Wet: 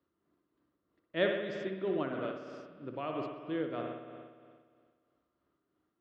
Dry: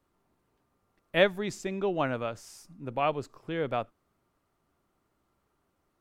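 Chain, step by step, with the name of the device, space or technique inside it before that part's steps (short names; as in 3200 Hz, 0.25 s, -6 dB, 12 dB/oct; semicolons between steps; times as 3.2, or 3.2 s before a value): combo amplifier with spring reverb and tremolo (spring tank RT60 1.9 s, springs 58 ms, chirp 75 ms, DRR 2 dB; tremolo 3.1 Hz, depth 42%; speaker cabinet 80–4400 Hz, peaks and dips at 110 Hz -7 dB, 320 Hz +7 dB, 820 Hz -9 dB, 2400 Hz -6 dB); gain -5.5 dB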